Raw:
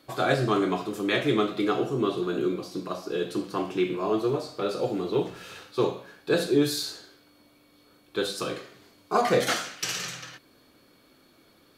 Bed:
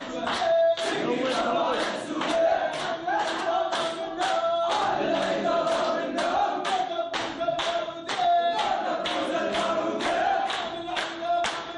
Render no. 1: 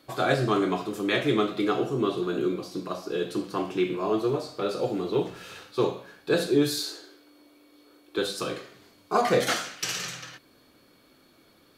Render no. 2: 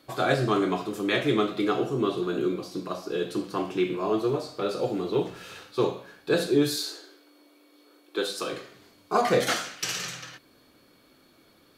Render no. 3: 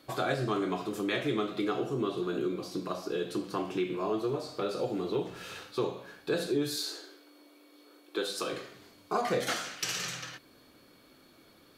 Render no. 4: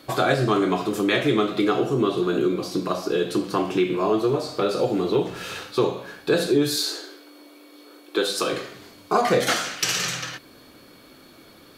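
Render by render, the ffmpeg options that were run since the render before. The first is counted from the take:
-filter_complex "[0:a]asettb=1/sr,asplit=3[s0][s1][s2];[s0]atrim=end=6.794[s3];[s1]atrim=start=6.79:end=8.18,asetpts=PTS-STARTPTS,afade=t=in:d=0.004:c=qsin,afade=t=out:st=1.386:d=0.004:c=qsin,lowshelf=f=240:t=q:w=3:g=-8.5[s4];[s2]atrim=start=8.176[s5];[s3][s4]acrossfade=d=0.004:c1=hsin:c2=qsin[s6];[s6][s5]acrossfade=d=0.004:c1=qsin:c2=hsin"
-filter_complex "[0:a]asettb=1/sr,asplit=3[s0][s1][s2];[s0]atrim=end=6.764[s3];[s1]atrim=start=6.76:end=8.53,asetpts=PTS-STARTPTS,afade=t=in:d=0.004:c=qsin,afade=t=out:st=1.766:d=0.004:c=qsin,highpass=260[s4];[s2]atrim=start=8.526[s5];[s3][s4]acrossfade=d=0.004:c1=hsin:c2=qsin[s6];[s6][s5]acrossfade=d=0.004:c1=qsin:c2=hsin"
-af "acompressor=threshold=0.0251:ratio=2"
-af "volume=3.16"

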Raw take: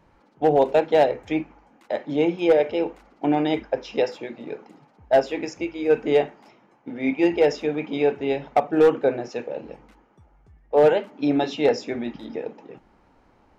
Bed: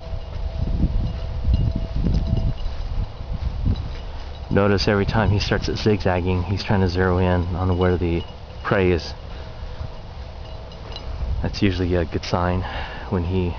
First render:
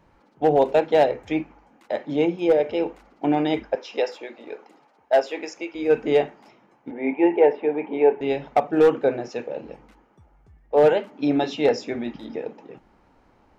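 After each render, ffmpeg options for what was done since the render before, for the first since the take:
-filter_complex "[0:a]asettb=1/sr,asplit=3[s0][s1][s2];[s0]atrim=end=2.264[s3];[s1]atrim=start=2.26:end=2.69,asetpts=PTS-STARTPTS,afade=t=in:d=0.004:c=qsin,afade=t=out:st=0.426:d=0.004:c=qsin,equalizer=f=2500:t=o:w=3:g=-4.5[s4];[s2]atrim=start=2.686[s5];[s3][s4]acrossfade=d=0.004:c1=hsin:c2=qsin[s6];[s6][s5]acrossfade=d=0.004:c1=qsin:c2=hsin,asettb=1/sr,asplit=3[s7][s8][s9];[s7]atrim=end=3.754[s10];[s8]atrim=start=3.75:end=5.75,asetpts=PTS-STARTPTS,afade=t=in:d=0.004:c=qsin,afade=t=out:st=1.996:d=0.004:c=qsin,highpass=400[s11];[s9]atrim=start=5.746[s12];[s10][s11]acrossfade=d=0.004:c1=hsin:c2=qsin[s13];[s13][s12]acrossfade=d=0.004:c1=qsin:c2=hsin,asettb=1/sr,asplit=3[s14][s15][s16];[s14]atrim=end=6.914[s17];[s15]atrim=start=6.91:end=8.21,asetpts=PTS-STARTPTS,afade=t=in:d=0.004:c=qsin,afade=t=out:st=1.296:d=0.004:c=qsin,highpass=260,equalizer=f=400:t=q:w=4:g=6,equalizer=f=880:t=q:w=4:g=9,equalizer=f=1300:t=q:w=4:g=-9,lowpass=f=2400:w=0.5412,lowpass=f=2400:w=1.3066[s18];[s16]atrim=start=8.206[s19];[s17][s18]acrossfade=d=0.004:c1=hsin:c2=qsin[s20];[s20][s19]acrossfade=d=0.004:c1=qsin:c2=hsin"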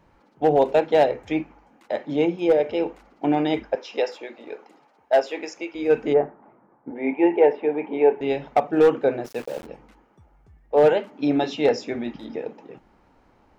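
-filter_complex "[0:a]asplit=3[s0][s1][s2];[s0]afade=t=out:st=6.12:d=0.02[s3];[s1]lowpass=f=1500:w=0.5412,lowpass=f=1500:w=1.3066,afade=t=in:st=6.12:d=0.02,afade=t=out:st=6.94:d=0.02[s4];[s2]afade=t=in:st=6.94:d=0.02[s5];[s3][s4][s5]amix=inputs=3:normalize=0,asplit=3[s6][s7][s8];[s6]afade=t=out:st=9.24:d=0.02[s9];[s7]aeval=exprs='val(0)*gte(abs(val(0)),0.0141)':c=same,afade=t=in:st=9.24:d=0.02,afade=t=out:st=9.65:d=0.02[s10];[s8]afade=t=in:st=9.65:d=0.02[s11];[s9][s10][s11]amix=inputs=3:normalize=0"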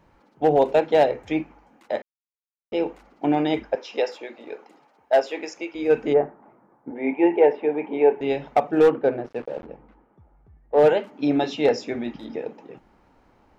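-filter_complex "[0:a]asettb=1/sr,asplit=3[s0][s1][s2];[s0]atrim=end=8.894[s3];[s1]atrim=start=8.89:end=10.79,asetpts=PTS-STARTPTS,afade=t=in:d=0.004:c=qsin,afade=t=out:st=1.896:d=0.004:c=qsin,adynamicsmooth=sensitivity=1:basefreq=1900[s4];[s2]atrim=start=10.786[s5];[s3][s4]acrossfade=d=0.004:c1=hsin:c2=qsin[s6];[s6][s5]acrossfade=d=0.004:c1=qsin:c2=hsin,asplit=3[s7][s8][s9];[s7]atrim=end=2.02,asetpts=PTS-STARTPTS,afade=t=out:st=2.016:d=0.004:c=hsin[s10];[s8]atrim=start=2.02:end=2.72,asetpts=PTS-STARTPTS,volume=0[s11];[s9]atrim=start=2.72,asetpts=PTS-STARTPTS,afade=t=in:d=0.004:c=hsin[s12];[s10][s11][s12]concat=n=3:v=0:a=1"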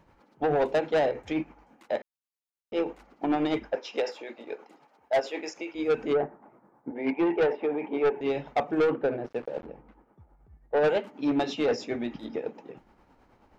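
-af "tremolo=f=9.3:d=0.5,asoftclip=type=tanh:threshold=0.112"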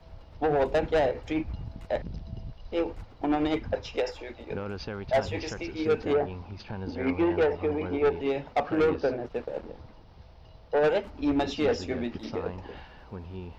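-filter_complex "[1:a]volume=0.126[s0];[0:a][s0]amix=inputs=2:normalize=0"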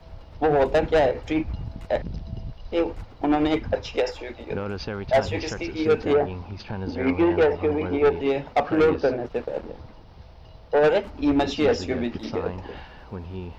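-af "volume=1.78"

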